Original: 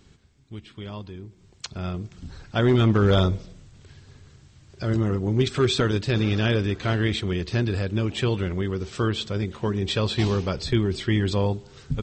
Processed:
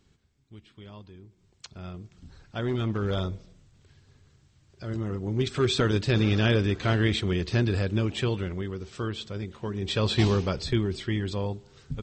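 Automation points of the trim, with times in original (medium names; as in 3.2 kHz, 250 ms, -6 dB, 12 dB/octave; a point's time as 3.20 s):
4.83 s -9.5 dB
6.00 s -0.5 dB
7.89 s -0.5 dB
8.81 s -7.5 dB
9.69 s -7.5 dB
10.15 s +1 dB
11.27 s -7 dB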